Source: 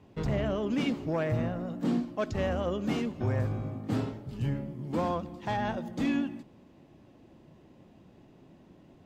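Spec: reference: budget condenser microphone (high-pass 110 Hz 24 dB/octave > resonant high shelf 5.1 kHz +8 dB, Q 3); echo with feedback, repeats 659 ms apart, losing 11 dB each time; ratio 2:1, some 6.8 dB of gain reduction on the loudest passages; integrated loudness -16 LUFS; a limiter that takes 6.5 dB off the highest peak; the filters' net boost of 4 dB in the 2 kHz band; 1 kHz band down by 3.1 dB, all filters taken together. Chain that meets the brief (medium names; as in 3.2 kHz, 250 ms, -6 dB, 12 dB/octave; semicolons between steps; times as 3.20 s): peaking EQ 1 kHz -5.5 dB; peaking EQ 2 kHz +8 dB; compression 2:1, threshold -37 dBFS; peak limiter -29.5 dBFS; high-pass 110 Hz 24 dB/octave; resonant high shelf 5.1 kHz +8 dB, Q 3; feedback delay 659 ms, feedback 28%, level -11 dB; trim +24 dB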